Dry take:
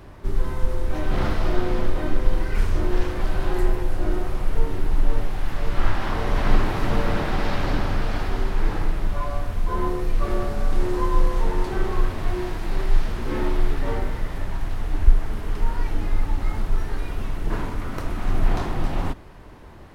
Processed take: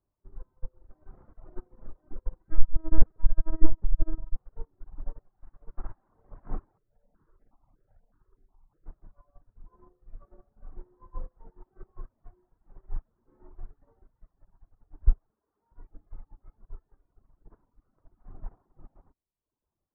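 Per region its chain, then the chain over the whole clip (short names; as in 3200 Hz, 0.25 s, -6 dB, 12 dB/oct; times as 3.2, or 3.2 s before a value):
2.48–4.36 LPC vocoder at 8 kHz pitch kept + low shelf 100 Hz +11.5 dB
6.78–8.86 compressor 16:1, threshold -19 dBFS + step phaser 8.2 Hz 230–3600 Hz
15.3–15.72 HPF 63 Hz 24 dB/oct + bell 120 Hz -12 dB 1.4 oct
whole clip: LPF 1300 Hz 24 dB/oct; reverb removal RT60 1.2 s; upward expander 2.5:1, over -29 dBFS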